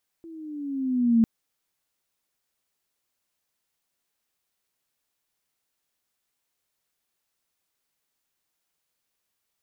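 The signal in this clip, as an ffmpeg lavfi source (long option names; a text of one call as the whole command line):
ffmpeg -f lavfi -i "aevalsrc='pow(10,(-14+26*(t/1-1))/20)*sin(2*PI*335*1/(-7*log(2)/12)*(exp(-7*log(2)/12*t/1)-1))':duration=1:sample_rate=44100" out.wav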